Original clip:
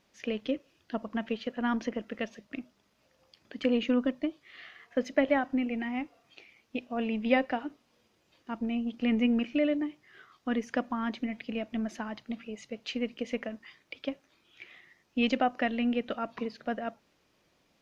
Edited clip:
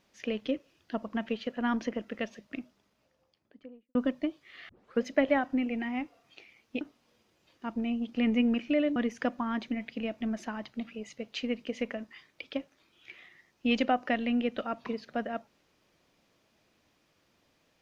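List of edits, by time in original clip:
2.56–3.95 studio fade out
4.69 tape start 0.32 s
6.81–7.66 cut
9.81–10.48 cut

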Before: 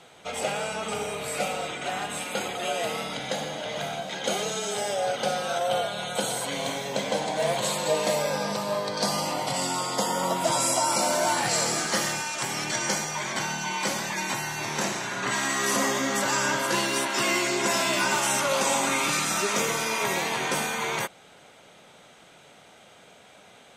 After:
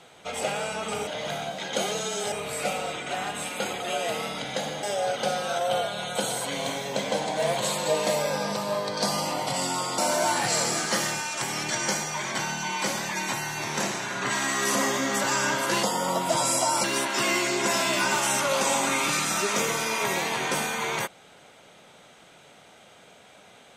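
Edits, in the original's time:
3.58–4.83 move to 1.07
9.98–10.99 move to 16.84

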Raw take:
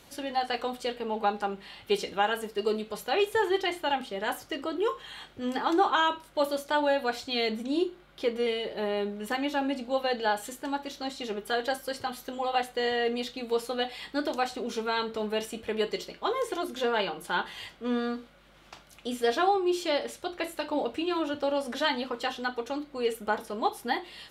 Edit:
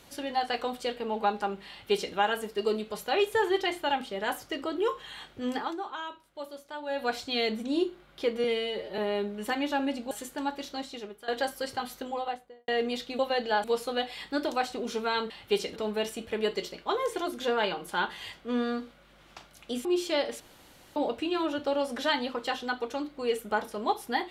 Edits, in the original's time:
1.69–2.15 copy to 15.12
5.53–7.08 dip -13 dB, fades 0.23 s
8.44–8.8 stretch 1.5×
9.93–10.38 move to 13.46
10.95–11.55 fade out, to -18.5 dB
12.22–12.95 studio fade out
19.21–19.61 cut
20.16–20.72 room tone

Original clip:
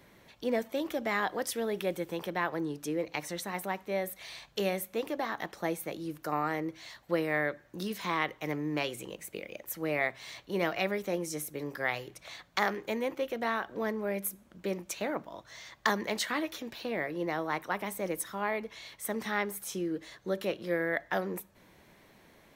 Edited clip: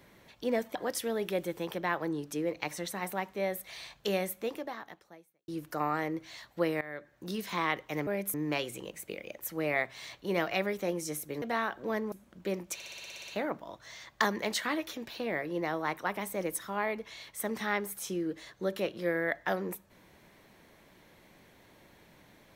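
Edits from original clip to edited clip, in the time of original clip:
0.75–1.27 cut
4.89–6 fade out quadratic
7.33–7.9 fade in, from -19 dB
11.67–13.34 cut
14.04–14.31 move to 8.59
14.93 stutter 0.06 s, 10 plays

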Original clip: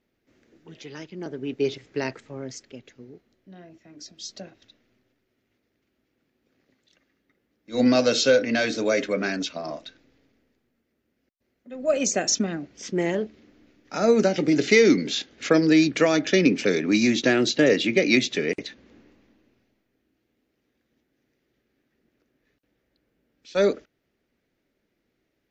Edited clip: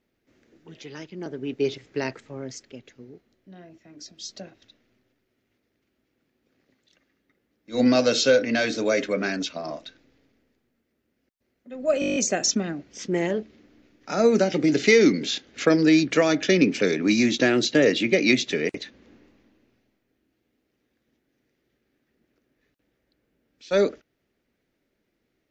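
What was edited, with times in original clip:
12 stutter 0.02 s, 9 plays

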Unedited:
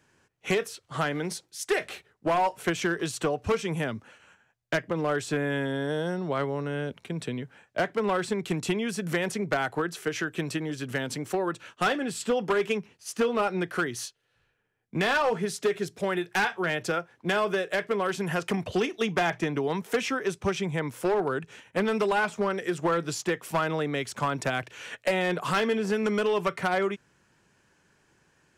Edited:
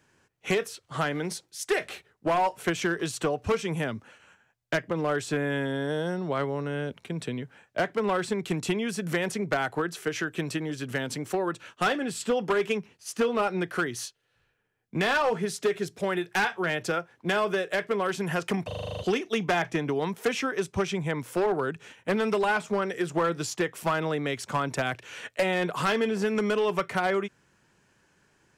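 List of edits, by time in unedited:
18.67 stutter 0.04 s, 9 plays

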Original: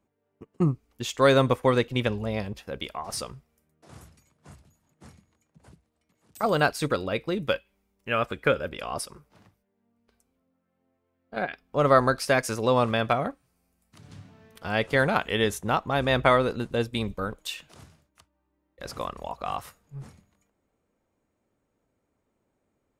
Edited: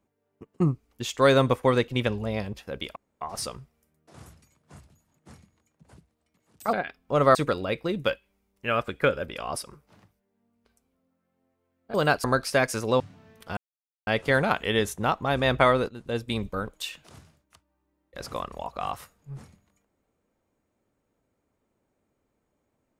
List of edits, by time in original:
2.96 insert room tone 0.25 s
6.48–6.78 swap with 11.37–11.99
12.75–14.15 cut
14.72 insert silence 0.50 s
16.54–17.08 fade in equal-power, from -19.5 dB

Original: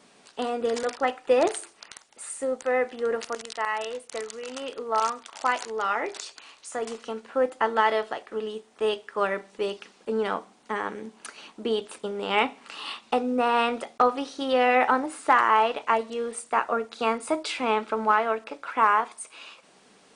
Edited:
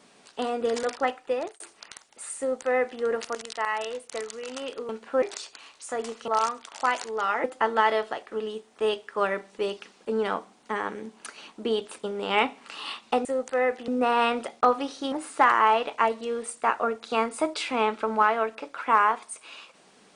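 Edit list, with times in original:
1.01–1.6 fade out
2.38–3.01 copy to 13.25
4.89–6.05 swap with 7.11–7.44
14.49–15.01 cut

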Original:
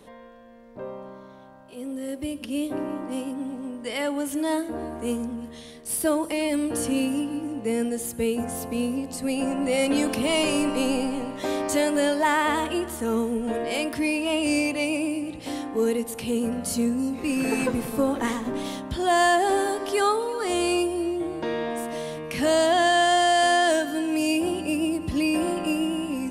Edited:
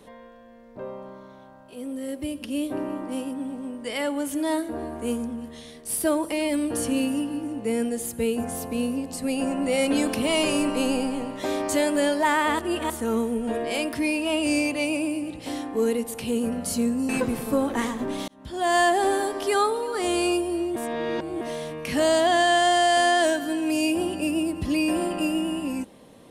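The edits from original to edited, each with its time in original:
12.59–12.9 reverse
17.09–17.55 cut
18.74–19.27 fade in
21.22–21.87 reverse

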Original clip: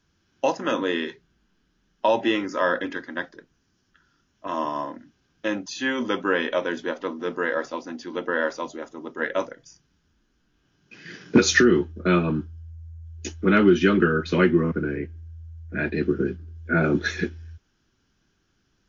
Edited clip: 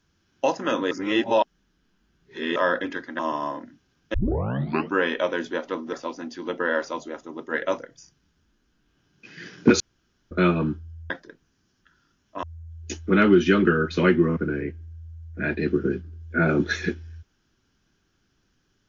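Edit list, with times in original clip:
0.91–2.56 reverse
3.19–4.52 move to 12.78
5.47 tape start 0.81 s
7.26–7.61 cut
11.48–11.99 room tone

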